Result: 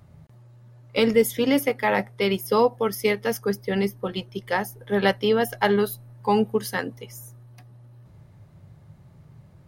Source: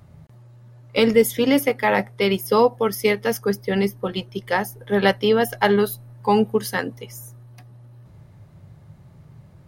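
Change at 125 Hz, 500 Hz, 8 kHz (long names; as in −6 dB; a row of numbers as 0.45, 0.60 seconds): −3.0, −3.0, −3.0 decibels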